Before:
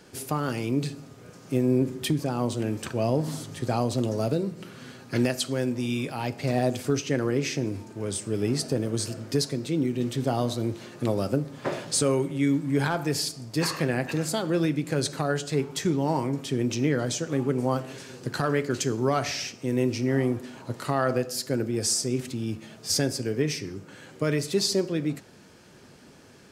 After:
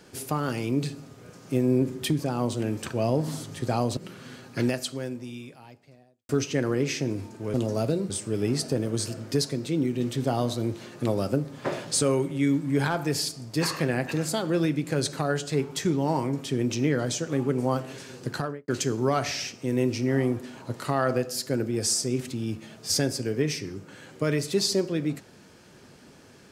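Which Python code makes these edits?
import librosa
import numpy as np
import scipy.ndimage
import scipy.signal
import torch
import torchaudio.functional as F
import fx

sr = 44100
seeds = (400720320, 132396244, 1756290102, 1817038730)

y = fx.studio_fade_out(x, sr, start_s=18.29, length_s=0.39)
y = fx.edit(y, sr, fx.move(start_s=3.97, length_s=0.56, to_s=8.1),
    fx.fade_out_span(start_s=5.09, length_s=1.76, curve='qua'), tone=tone)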